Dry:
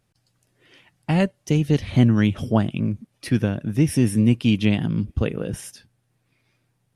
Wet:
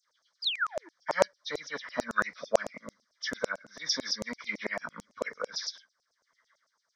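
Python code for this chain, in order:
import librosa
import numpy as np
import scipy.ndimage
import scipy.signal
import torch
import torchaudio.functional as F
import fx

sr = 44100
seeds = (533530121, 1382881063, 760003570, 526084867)

y = fx.freq_compress(x, sr, knee_hz=1500.0, ratio=1.5)
y = fx.fixed_phaser(y, sr, hz=530.0, stages=8)
y = fx.spec_paint(y, sr, seeds[0], shape='fall', start_s=0.42, length_s=0.47, low_hz=300.0, high_hz=5200.0, level_db=-37.0)
y = fx.filter_lfo_highpass(y, sr, shape='saw_down', hz=9.0, low_hz=610.0, high_hz=6900.0, q=3.5)
y = y * librosa.db_to_amplitude(2.0)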